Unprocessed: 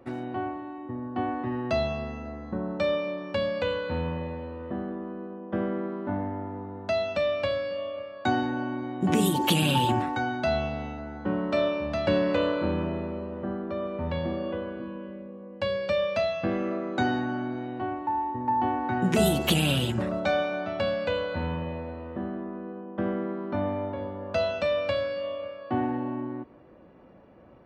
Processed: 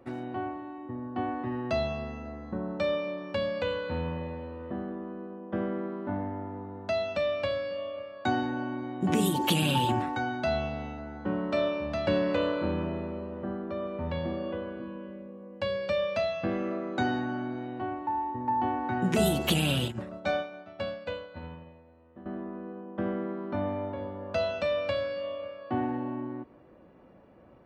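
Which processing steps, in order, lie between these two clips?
19.88–22.26 upward expander 2.5:1, over -35 dBFS; gain -2.5 dB

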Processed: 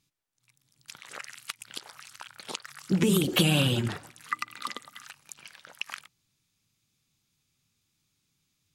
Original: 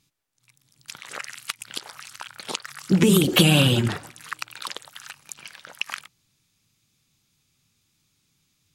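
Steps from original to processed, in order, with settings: 4.29–5.03 small resonant body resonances 240/1200/2000 Hz, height 17 dB -> 14 dB; gain -6.5 dB

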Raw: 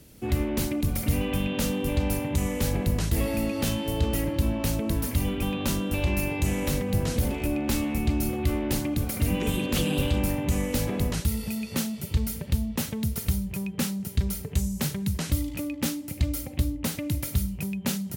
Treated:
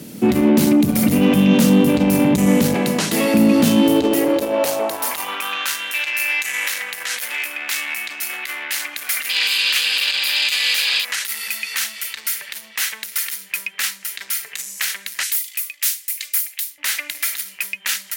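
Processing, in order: 2.74–3.34 weighting filter A; 9.29–11.05 painted sound noise 2300–5100 Hz -31 dBFS; 15.23–16.78 differentiator; in parallel at -0.5 dB: negative-ratio compressor -29 dBFS, ratio -1; on the sum: soft clip -19 dBFS, distortion -15 dB; high-pass sweep 200 Hz -> 1800 Hz, 3.6–5.81; gain +7.5 dB

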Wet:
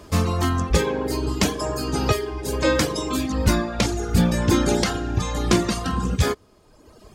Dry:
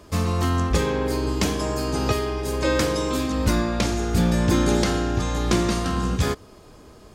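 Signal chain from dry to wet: reverb removal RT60 1.3 s; gain +3.5 dB

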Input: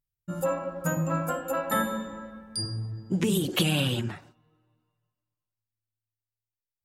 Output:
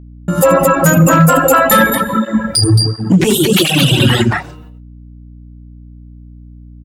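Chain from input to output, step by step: low shelf 110 Hz -4.5 dB; loudspeakers at several distances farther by 27 m -7 dB, 76 m -5 dB; compressor 2:1, threshold -44 dBFS, peak gain reduction 13 dB; dynamic EQ 740 Hz, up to -4 dB, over -52 dBFS, Q 1.3; overloaded stage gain 33 dB; AGC gain up to 16 dB; gate -50 dBFS, range -33 dB; reverb removal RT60 1.5 s; hum 60 Hz, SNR 28 dB; maximiser +23 dB; 1.9–4 tape flanging out of phase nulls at 1.4 Hz, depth 6.1 ms; gain -1 dB

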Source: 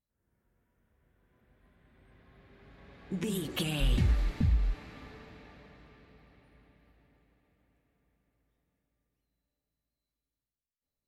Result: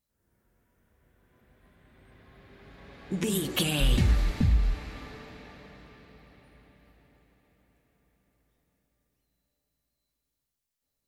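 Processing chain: tone controls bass -2 dB, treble +4 dB; on a send: reverb RT60 0.85 s, pre-delay 20 ms, DRR 18.5 dB; on the sum: gain +5.5 dB

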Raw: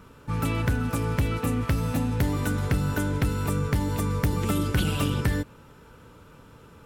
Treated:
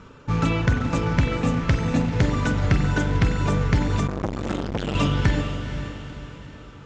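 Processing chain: reverb removal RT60 1.1 s; in parallel at -10 dB: Schmitt trigger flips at -29 dBFS; on the sum: elliptic low-pass 6900 Hz, stop band 50 dB; on a send: diffused feedback echo 0.486 s, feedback 45%, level -9.5 dB; on the sum: spring tank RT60 1.2 s, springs 42 ms, chirp 30 ms, DRR 5 dB; 4.07–4.95 core saturation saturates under 720 Hz; gain +5 dB

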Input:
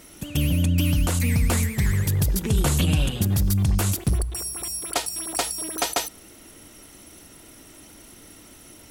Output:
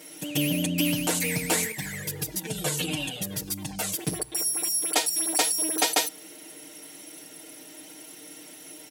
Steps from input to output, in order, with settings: HPF 280 Hz 12 dB/oct; bell 1200 Hz -9 dB 0.42 oct; comb 6.5 ms, depth 98%; 1.72–3.99 cascading flanger falling 1.6 Hz

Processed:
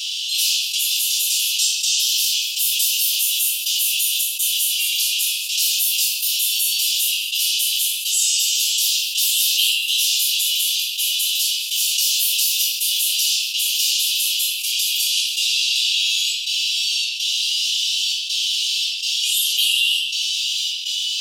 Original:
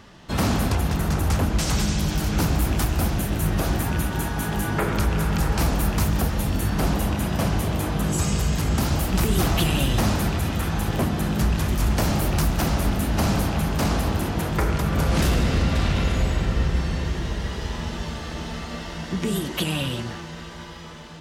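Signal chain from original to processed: steep high-pass 2700 Hz 96 dB/oct; step gate "xxx.xxxxx." 82 bpm -24 dB; formant-preserving pitch shift +2 st; reverb RT60 0.50 s, pre-delay 3 ms, DRR -8.5 dB; fast leveller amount 70%

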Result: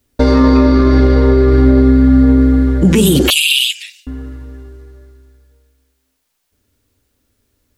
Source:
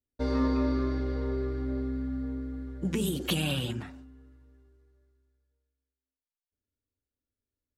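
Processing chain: 3.3–4.07 steep high-pass 2400 Hz 48 dB/oct; maximiser +28 dB; gain -1 dB

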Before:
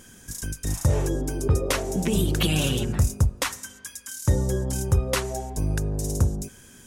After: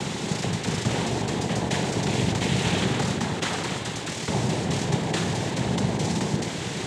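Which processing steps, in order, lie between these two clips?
per-bin compression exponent 0.2; 2.64–3.77 small resonant body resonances 820/1400/3000 Hz, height 11 dB; noise vocoder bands 6; gain -7.5 dB

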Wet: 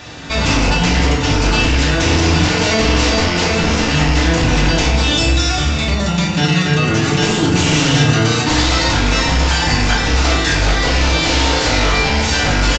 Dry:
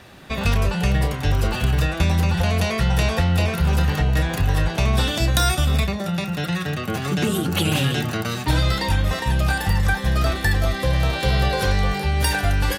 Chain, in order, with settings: rattling part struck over -18 dBFS, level -17 dBFS; high shelf 3300 Hz +10 dB; 4.85–7.23 compressor, threshold -19 dBFS, peak gain reduction 9 dB; sine folder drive 16 dB, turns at -2 dBFS; downsampling 16000 Hz; FDN reverb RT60 1 s, low-frequency decay 1.25×, high-frequency decay 0.6×, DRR -3 dB; gain -13.5 dB

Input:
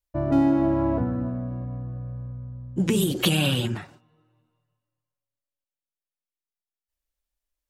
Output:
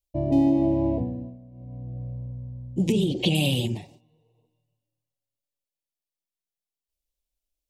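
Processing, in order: 2.92–3.35 LPF 4000 Hz 12 dB/oct; 4.18–4.44 spectral repair 290–1500 Hz before; Butterworth band-stop 1400 Hz, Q 0.8; 0.88–2.02 dip -16.5 dB, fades 0.50 s

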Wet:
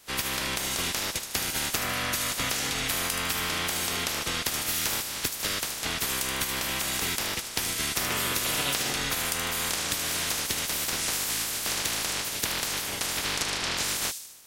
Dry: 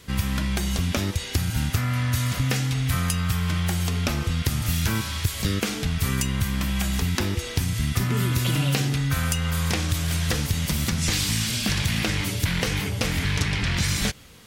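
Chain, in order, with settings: spectral limiter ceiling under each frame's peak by 28 dB; thin delay 76 ms, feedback 54%, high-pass 5400 Hz, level -5.5 dB; gain -6 dB

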